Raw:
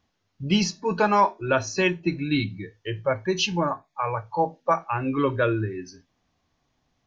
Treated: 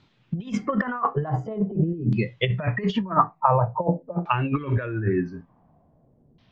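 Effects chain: speed glide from 124% -> 93%; bell 160 Hz +10.5 dB 0.98 oct; negative-ratio compressor -26 dBFS, ratio -0.5; high shelf 5600 Hz -4 dB; LFO low-pass saw down 0.47 Hz 390–3900 Hz; gain +2.5 dB

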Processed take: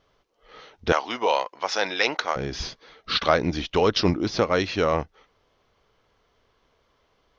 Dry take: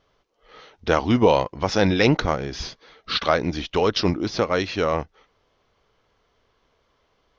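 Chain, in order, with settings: 0.92–2.36 HPF 710 Hz 12 dB/oct

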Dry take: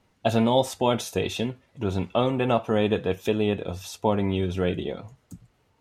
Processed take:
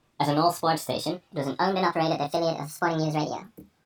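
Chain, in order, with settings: speed glide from 124% -> 177%; doubler 26 ms -4.5 dB; gain -2.5 dB

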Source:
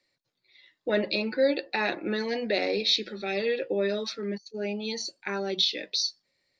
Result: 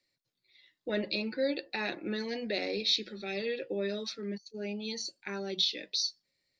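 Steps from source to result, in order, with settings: bell 900 Hz -6.5 dB 2.7 oct; gain -2.5 dB

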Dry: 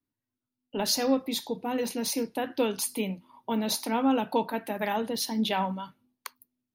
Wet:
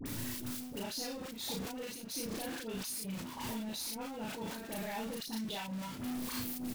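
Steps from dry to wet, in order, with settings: zero-crossing step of -27 dBFS; bell 890 Hz -5.5 dB 2.4 oct; level quantiser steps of 19 dB; step gate "xxx.x..xxxxx." 148 bpm -12 dB; doubler 36 ms -2 dB; dispersion highs, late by 59 ms, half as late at 1200 Hz; sustainer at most 36 dB/s; gain -4 dB

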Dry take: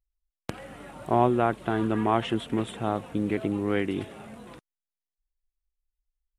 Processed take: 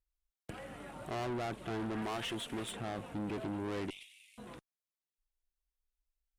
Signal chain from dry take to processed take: 2.02–2.73 tilt +2 dB/oct; 3.9–4.38 steep high-pass 2200 Hz 72 dB/oct; tube stage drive 32 dB, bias 0.4; gain -2.5 dB

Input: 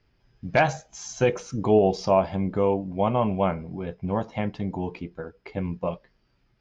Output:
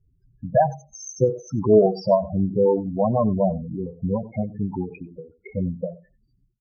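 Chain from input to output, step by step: on a send: echo 94 ms -23 dB; on the sum: loudest bins only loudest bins 8; outdoor echo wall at 16 m, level -21 dB; ending taper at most 160 dB/s; gain +5 dB

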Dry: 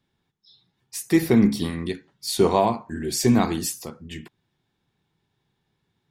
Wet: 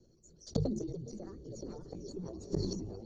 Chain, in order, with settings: echoes that change speed 0.234 s, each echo -4 st, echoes 3, each echo -6 dB; reverb removal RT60 0.6 s; compressor 10:1, threshold -26 dBFS, peak gain reduction 15 dB; vocal tract filter i; low shelf 160 Hz +4 dB; frequency shift -100 Hz; speed mistake 7.5 ips tape played at 15 ips; bell 280 Hz -13 dB 0.21 oct; diffused feedback echo 0.486 s, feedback 44%, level -13.5 dB; flipped gate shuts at -37 dBFS, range -25 dB; notches 50/100/150 Hz; sustainer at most 34 dB/s; gain +18 dB

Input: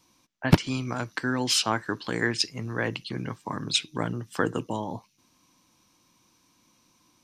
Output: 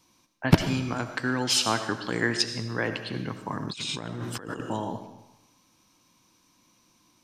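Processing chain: on a send at -8 dB: reverb RT60 0.95 s, pre-delay 40 ms; 3.63–4.6 on the sum: negative-ratio compressor -36 dBFS, ratio -1

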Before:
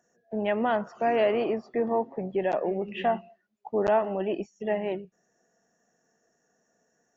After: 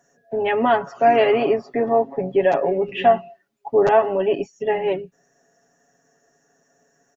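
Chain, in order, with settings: comb 7.2 ms, depth 92%; gain +6 dB

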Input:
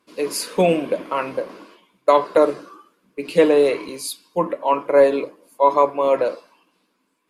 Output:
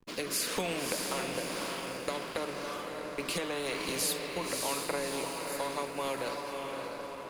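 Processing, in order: compressor 5:1, threshold -29 dBFS, peak gain reduction 18 dB; rotary speaker horn 1 Hz, later 5.5 Hz, at 5.51; on a send: diffused feedback echo 0.602 s, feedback 42%, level -7.5 dB; on the sum: backlash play -57 dBFS; spectral compressor 2:1; gain +1.5 dB

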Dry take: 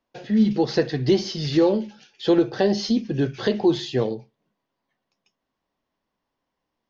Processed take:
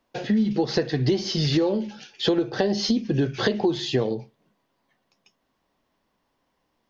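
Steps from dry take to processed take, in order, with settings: compressor 6:1, threshold -27 dBFS, peak gain reduction 13 dB; gain +7.5 dB

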